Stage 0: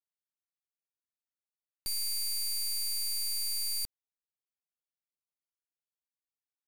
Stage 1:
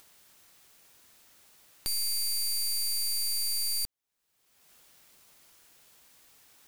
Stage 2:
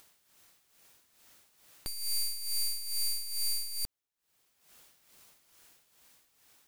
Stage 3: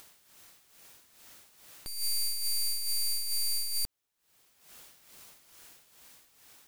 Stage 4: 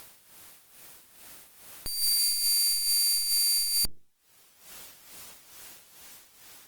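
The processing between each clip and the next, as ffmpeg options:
ffmpeg -i in.wav -af "acompressor=mode=upward:threshold=-36dB:ratio=2.5,volume=3dB" out.wav
ffmpeg -i in.wav -af "aeval=exprs='clip(val(0),-1,0.0168)':channel_layout=same,dynaudnorm=framelen=220:gausssize=11:maxgain=3.5dB,tremolo=f=2.3:d=0.68,volume=-2dB" out.wav
ffmpeg -i in.wav -af "alimiter=level_in=10dB:limit=-24dB:level=0:latency=1:release=232,volume=-10dB,volume=6.5dB" out.wav
ffmpeg -i in.wav -af "volume=7dB" -ar 48000 -c:a libopus -b:a 24k out.opus

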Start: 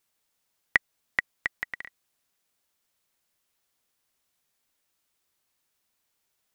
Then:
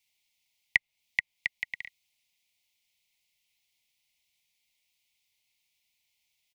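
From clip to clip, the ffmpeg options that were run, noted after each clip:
ffmpeg -i in.wav -filter_complex "[0:a]firequalizer=gain_entry='entry(110,0);entry(360,-12);entry(520,-8);entry(910,-3);entry(1400,-29);entry(2100,11);entry(8100,1)':delay=0.05:min_phase=1,acrossover=split=140|2600[link_01][link_02][link_03];[link_03]acompressor=threshold=-37dB:ratio=6[link_04];[link_01][link_02][link_04]amix=inputs=3:normalize=0,volume=-3.5dB" out.wav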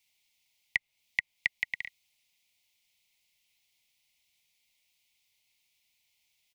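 ffmpeg -i in.wav -af "alimiter=limit=-14dB:level=0:latency=1:release=58,volume=2.5dB" out.wav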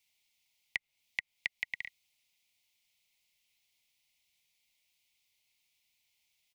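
ffmpeg -i in.wav -af "acompressor=threshold=-27dB:ratio=6,volume=-2.5dB" out.wav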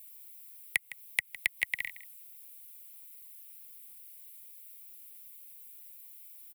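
ffmpeg -i in.wav -filter_complex "[0:a]acrossover=split=170|1300[link_01][link_02][link_03];[link_03]aexciter=amount=5.4:drive=9.9:freq=8600[link_04];[link_01][link_02][link_04]amix=inputs=3:normalize=0,aecho=1:1:159:0.158,volume=5.5dB" out.wav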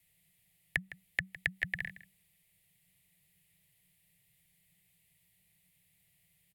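ffmpeg -i in.wav -af "aemphasis=mode=reproduction:type=riaa,afreqshift=-190" out.wav

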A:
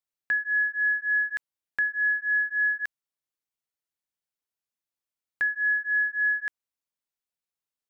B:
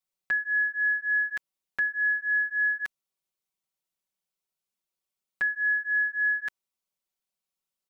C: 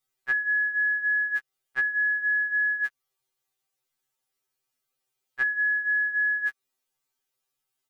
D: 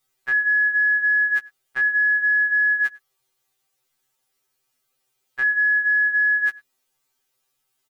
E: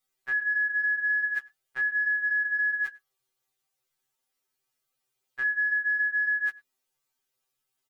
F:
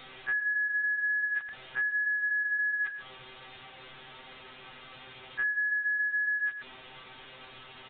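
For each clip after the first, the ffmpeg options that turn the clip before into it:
ffmpeg -i in.wav -af "equalizer=frequency=1700:width_type=o:width=0.39:gain=-6.5,aecho=1:1:5.3:0.94" out.wav
ffmpeg -i in.wav -af "acompressor=threshold=-35dB:ratio=6,equalizer=frequency=1500:width_type=o:width=0.77:gain=3,afftfilt=real='re*2.45*eq(mod(b,6),0)':imag='im*2.45*eq(mod(b,6),0)':win_size=2048:overlap=0.75,volume=8dB" out.wav
ffmpeg -i in.wav -filter_complex "[0:a]asplit=2[link_01][link_02];[link_02]adelay=105,volume=-25dB,highshelf=frequency=4000:gain=-2.36[link_03];[link_01][link_03]amix=inputs=2:normalize=0,acontrast=49,alimiter=limit=-17.5dB:level=0:latency=1:release=22,volume=2.5dB" out.wav
ffmpeg -i in.wav -af "flanger=delay=3.9:depth=4.6:regen=-60:speed=0.46:shape=triangular,volume=-3.5dB" out.wav
ffmpeg -i in.wav -af "aeval=exprs='val(0)+0.5*0.0178*sgn(val(0))':channel_layout=same,acompressor=threshold=-28dB:ratio=4,aresample=8000,aresample=44100" out.wav

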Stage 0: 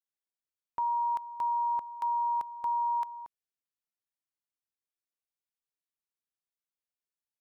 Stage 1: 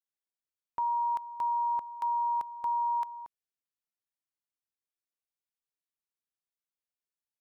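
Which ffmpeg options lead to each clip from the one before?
ffmpeg -i in.wav -af anull out.wav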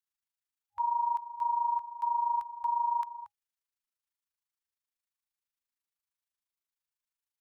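ffmpeg -i in.wav -af "tremolo=f=26:d=0.71,afftfilt=real='re*(1-between(b*sr/4096,100,820))':imag='im*(1-between(b*sr/4096,100,820))':win_size=4096:overlap=0.75,volume=3dB" out.wav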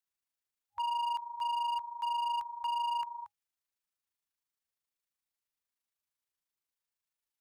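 ffmpeg -i in.wav -af "volume=30.5dB,asoftclip=hard,volume=-30.5dB" out.wav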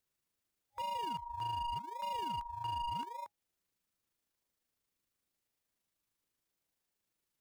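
ffmpeg -i in.wav -filter_complex "[0:a]asplit=2[link_01][link_02];[link_02]acrusher=samples=41:mix=1:aa=0.000001:lfo=1:lforange=24.6:lforate=0.85,volume=-10.5dB[link_03];[link_01][link_03]amix=inputs=2:normalize=0,alimiter=level_in=13.5dB:limit=-24dB:level=0:latency=1:release=495,volume=-13.5dB,volume=4dB" out.wav

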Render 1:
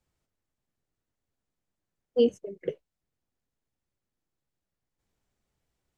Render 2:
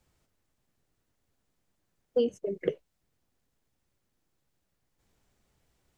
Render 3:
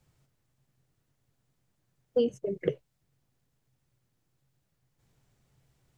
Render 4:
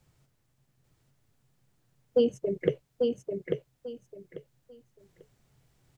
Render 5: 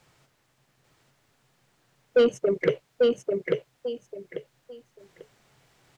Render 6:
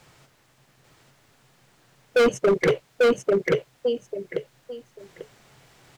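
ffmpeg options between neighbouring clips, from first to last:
ffmpeg -i in.wav -af "acompressor=threshold=-31dB:ratio=10,volume=8dB" out.wav
ffmpeg -i in.wav -af "equalizer=frequency=130:width=3.1:gain=14" out.wav
ffmpeg -i in.wav -af "aecho=1:1:843|1686|2529:0.631|0.139|0.0305,volume=2.5dB" out.wav
ffmpeg -i in.wav -filter_complex "[0:a]asplit=2[link_01][link_02];[link_02]highpass=frequency=720:poles=1,volume=19dB,asoftclip=type=tanh:threshold=-9.5dB[link_03];[link_01][link_03]amix=inputs=2:normalize=0,lowpass=frequency=3800:poles=1,volume=-6dB" out.wav
ffmpeg -i in.wav -af "asoftclip=type=hard:threshold=-22.5dB,volume=7.5dB" out.wav

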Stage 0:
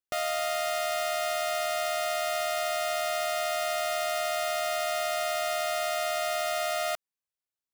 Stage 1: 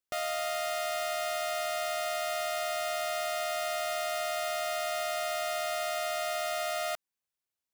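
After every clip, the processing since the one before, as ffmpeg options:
ffmpeg -i in.wav -af "alimiter=level_in=3dB:limit=-24dB:level=0:latency=1:release=53,volume=-3dB,volume=1.5dB" out.wav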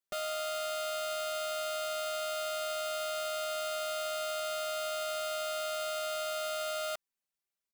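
ffmpeg -i in.wav -af "aecho=1:1:5.1:0.97,volume=-5dB" out.wav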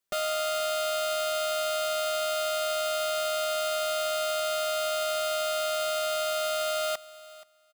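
ffmpeg -i in.wav -af "aecho=1:1:477|954:0.112|0.0168,volume=6.5dB" out.wav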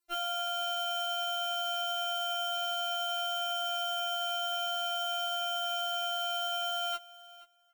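ffmpeg -i in.wav -af "afftfilt=real='re*4*eq(mod(b,16),0)':imag='im*4*eq(mod(b,16),0)':win_size=2048:overlap=0.75,volume=1dB" out.wav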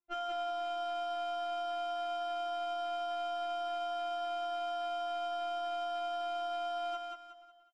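ffmpeg -i in.wav -af "adynamicsmooth=sensitivity=1.5:basefreq=1300,aecho=1:1:183|366|549|732|915:0.631|0.227|0.0818|0.0294|0.0106" out.wav

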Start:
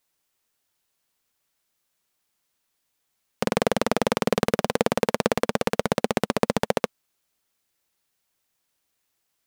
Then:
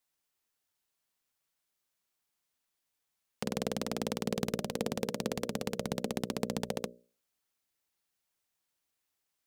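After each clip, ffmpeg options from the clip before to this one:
ffmpeg -i in.wav -filter_complex "[0:a]bandreject=frequency=60:width_type=h:width=6,bandreject=frequency=120:width_type=h:width=6,bandreject=frequency=180:width_type=h:width=6,bandreject=frequency=240:width_type=h:width=6,bandreject=frequency=300:width_type=h:width=6,bandreject=frequency=360:width_type=h:width=6,bandreject=frequency=420:width_type=h:width=6,bandreject=frequency=480:width_type=h:width=6,bandreject=frequency=540:width_type=h:width=6,bandreject=frequency=600:width_type=h:width=6,acrossover=split=460|3000[link_01][link_02][link_03];[link_02]acompressor=threshold=-40dB:ratio=2[link_04];[link_01][link_04][link_03]amix=inputs=3:normalize=0,volume=-7.5dB" out.wav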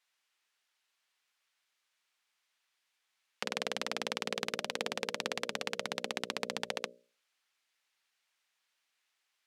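ffmpeg -i in.wav -filter_complex "[0:a]asplit=2[link_01][link_02];[link_02]alimiter=level_in=3dB:limit=-24dB:level=0:latency=1:release=37,volume=-3dB,volume=-3dB[link_03];[link_01][link_03]amix=inputs=2:normalize=0,bandpass=frequency=2300:width_type=q:width=0.78:csg=0,volume=5dB" out.wav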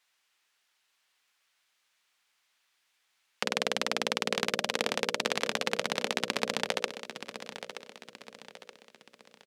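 ffmpeg -i in.wav -af "aecho=1:1:925|1850|2775|3700:0.266|0.112|0.0469|0.0197,volume=6dB" out.wav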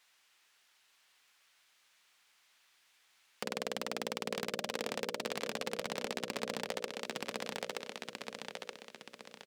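ffmpeg -i in.wav -af "acompressor=threshold=-36dB:ratio=4,asoftclip=type=hard:threshold=-31dB,volume=5dB" out.wav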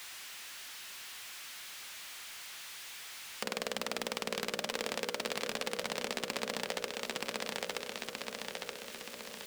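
ffmpeg -i in.wav -af "aeval=exprs='val(0)+0.5*0.00631*sgn(val(0))':channel_layout=same,tiltshelf=frequency=820:gain=-3" out.wav

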